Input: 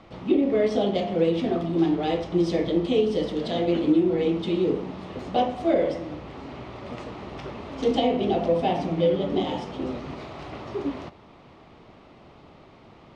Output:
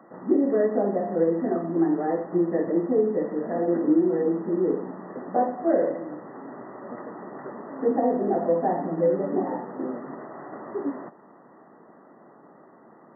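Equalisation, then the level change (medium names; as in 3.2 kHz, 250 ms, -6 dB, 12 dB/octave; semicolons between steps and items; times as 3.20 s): high-pass 190 Hz 24 dB/octave; brick-wall FIR low-pass 2 kHz; 0.0 dB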